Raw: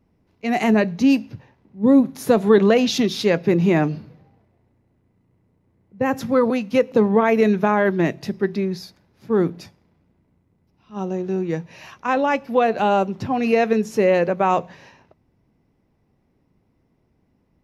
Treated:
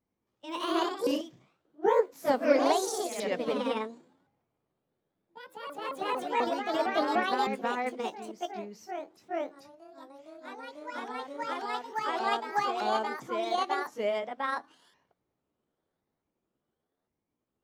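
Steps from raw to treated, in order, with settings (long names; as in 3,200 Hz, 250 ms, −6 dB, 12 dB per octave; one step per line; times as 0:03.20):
pitch shifter swept by a sawtooth +11 semitones, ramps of 1,067 ms
low-shelf EQ 260 Hz −10 dB
notch filter 2,600 Hz, Q 13
delay with pitch and tempo change per echo 104 ms, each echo +1 semitone, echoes 3
expander for the loud parts 1.5 to 1, over −26 dBFS
level −7.5 dB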